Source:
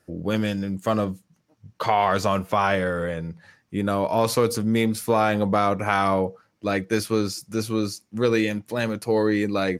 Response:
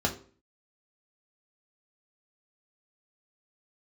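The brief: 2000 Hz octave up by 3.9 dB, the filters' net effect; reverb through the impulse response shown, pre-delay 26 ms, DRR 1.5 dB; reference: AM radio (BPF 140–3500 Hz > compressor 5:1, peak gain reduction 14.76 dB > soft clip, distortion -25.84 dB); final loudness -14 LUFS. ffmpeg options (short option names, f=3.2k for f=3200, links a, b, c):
-filter_complex "[0:a]equalizer=f=2k:t=o:g=5.5,asplit=2[a][b];[1:a]atrim=start_sample=2205,adelay=26[c];[b][c]afir=irnorm=-1:irlink=0,volume=-11dB[d];[a][d]amix=inputs=2:normalize=0,highpass=140,lowpass=3.5k,acompressor=threshold=-28dB:ratio=5,asoftclip=threshold=-17.5dB,volume=17.5dB"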